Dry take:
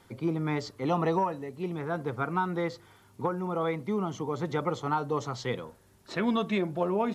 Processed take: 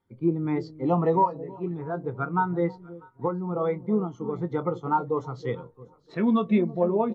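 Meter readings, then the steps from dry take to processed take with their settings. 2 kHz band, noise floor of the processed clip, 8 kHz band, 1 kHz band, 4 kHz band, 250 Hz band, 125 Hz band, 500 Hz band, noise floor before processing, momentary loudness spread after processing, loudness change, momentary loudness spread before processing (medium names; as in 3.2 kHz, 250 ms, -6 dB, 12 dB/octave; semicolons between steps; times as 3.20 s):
-2.5 dB, -58 dBFS, under -15 dB, +3.5 dB, no reading, +5.0 dB, +3.5 dB, +4.0 dB, -60 dBFS, 10 LU, +4.0 dB, 7 LU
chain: echo whose repeats swap between lows and highs 322 ms, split 840 Hz, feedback 59%, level -10 dB; in parallel at -8 dB: hysteresis with a dead band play -31.5 dBFS; on the sum: doubling 23 ms -11.5 dB; spectral contrast expander 1.5:1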